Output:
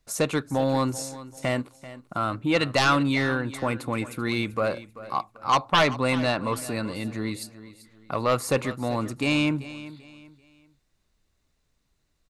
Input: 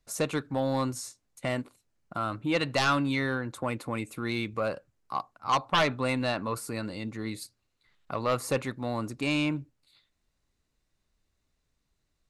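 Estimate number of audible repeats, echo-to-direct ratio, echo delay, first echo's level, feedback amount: 2, −15.5 dB, 388 ms, −16.0 dB, 32%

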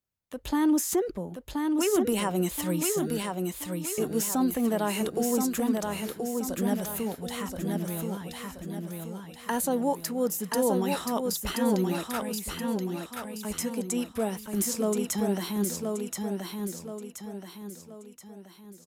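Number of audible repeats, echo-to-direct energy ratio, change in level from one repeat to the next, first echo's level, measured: 5, −3.0 dB, −7.5 dB, −4.0 dB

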